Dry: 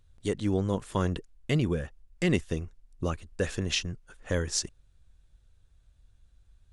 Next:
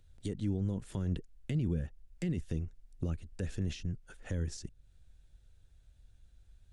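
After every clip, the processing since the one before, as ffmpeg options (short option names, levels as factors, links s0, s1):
-filter_complex "[0:a]equalizer=f=1100:t=o:w=0.33:g=-8,alimiter=limit=0.0794:level=0:latency=1:release=22,acrossover=split=280[s0][s1];[s1]acompressor=threshold=0.00447:ratio=5[s2];[s0][s2]amix=inputs=2:normalize=0"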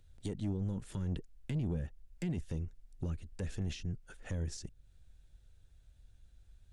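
-af "asoftclip=type=tanh:threshold=0.0376"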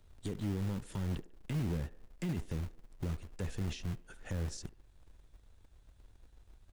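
-filter_complex "[0:a]acrossover=split=260|2800[s0][s1][s2];[s0]acrusher=bits=3:mode=log:mix=0:aa=0.000001[s3];[s1]aecho=1:1:72|144|216|288|360:0.2|0.0978|0.0479|0.0235|0.0115[s4];[s3][s4][s2]amix=inputs=3:normalize=0"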